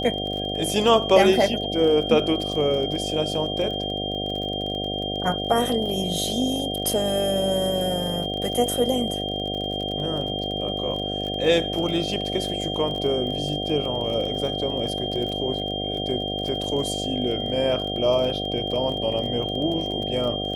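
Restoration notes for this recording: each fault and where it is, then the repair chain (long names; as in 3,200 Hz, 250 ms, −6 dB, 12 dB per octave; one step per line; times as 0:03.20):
mains buzz 50 Hz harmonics 15 −30 dBFS
surface crackle 29 per second −30 dBFS
whistle 3,200 Hz −29 dBFS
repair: click removal
hum removal 50 Hz, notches 15
notch filter 3,200 Hz, Q 30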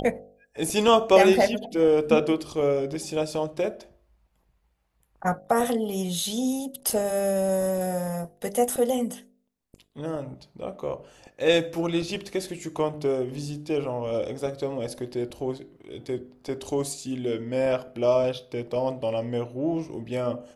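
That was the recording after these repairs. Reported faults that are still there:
none of them is left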